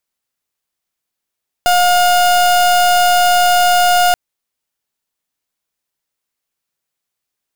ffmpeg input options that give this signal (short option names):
-f lavfi -i "aevalsrc='0.282*(2*lt(mod(713*t,1),0.36)-1)':d=2.48:s=44100"